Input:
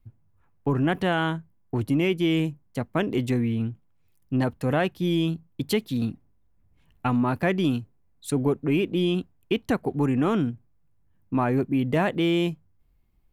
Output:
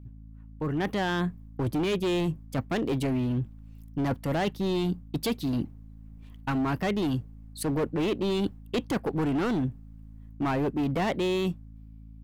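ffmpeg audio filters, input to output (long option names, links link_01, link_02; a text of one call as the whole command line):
ffmpeg -i in.wav -af "dynaudnorm=framelen=170:gausssize=11:maxgain=15.5dB,asoftclip=type=hard:threshold=-11.5dB,areverse,acompressor=threshold=-23dB:ratio=6,areverse,aeval=exprs='val(0)+0.00794*(sin(2*PI*50*n/s)+sin(2*PI*2*50*n/s)/2+sin(2*PI*3*50*n/s)/3+sin(2*PI*4*50*n/s)/4+sin(2*PI*5*50*n/s)/5)':channel_layout=same,asetrate=48000,aresample=44100,volume=-3dB" out.wav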